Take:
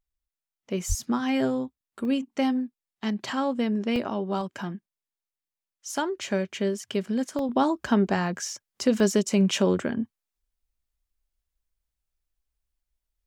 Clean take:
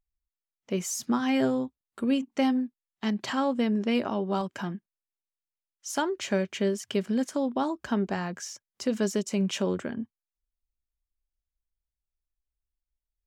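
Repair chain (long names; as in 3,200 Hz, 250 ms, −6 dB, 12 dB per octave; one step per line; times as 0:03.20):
0:00.88–0:01.00: high-pass filter 140 Hz 24 dB per octave
repair the gap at 0:02.05/0:03.96/0:07.39/0:09.00, 1.1 ms
0:07.49: level correction −5.5 dB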